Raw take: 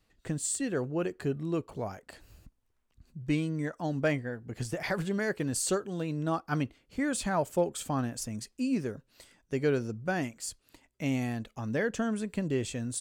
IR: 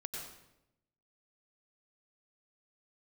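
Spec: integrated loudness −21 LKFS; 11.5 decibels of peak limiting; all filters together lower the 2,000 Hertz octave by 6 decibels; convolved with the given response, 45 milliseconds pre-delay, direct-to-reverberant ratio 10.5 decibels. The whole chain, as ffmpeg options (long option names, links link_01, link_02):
-filter_complex "[0:a]equalizer=frequency=2000:width_type=o:gain=-8,alimiter=level_in=4.5dB:limit=-24dB:level=0:latency=1,volume=-4.5dB,asplit=2[link_01][link_02];[1:a]atrim=start_sample=2205,adelay=45[link_03];[link_02][link_03]afir=irnorm=-1:irlink=0,volume=-10dB[link_04];[link_01][link_04]amix=inputs=2:normalize=0,volume=16.5dB"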